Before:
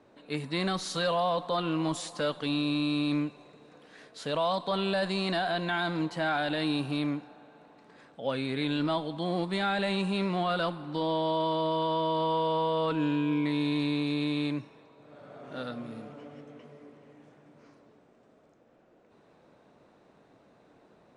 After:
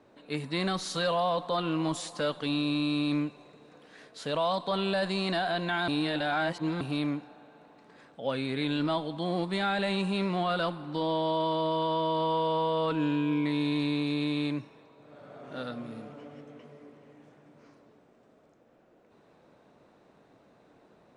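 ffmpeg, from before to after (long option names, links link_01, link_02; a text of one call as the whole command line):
ffmpeg -i in.wav -filter_complex "[0:a]asplit=3[link_01][link_02][link_03];[link_01]atrim=end=5.882[link_04];[link_02]atrim=start=5.878:end=6.812,asetpts=PTS-STARTPTS,areverse[link_05];[link_03]atrim=start=6.808[link_06];[link_04][link_05]acrossfade=duration=0.004:curve1=hsin:curve2=hsin[link_07];[link_07][link_06]acrossfade=duration=0.004:curve1=hsin:curve2=hsin" out.wav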